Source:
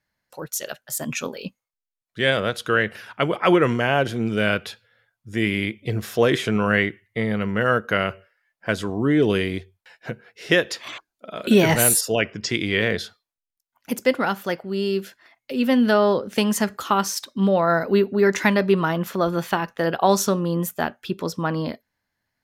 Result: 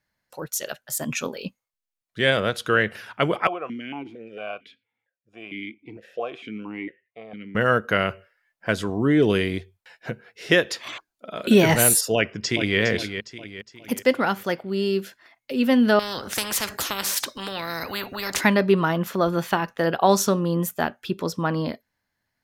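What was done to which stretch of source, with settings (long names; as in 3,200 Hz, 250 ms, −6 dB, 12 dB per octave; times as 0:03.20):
0:03.47–0:07.55: formant filter that steps through the vowels 4.4 Hz
0:12.15–0:12.79: delay throw 410 ms, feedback 45%, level −9 dB
0:15.99–0:18.41: every bin compressed towards the loudest bin 4 to 1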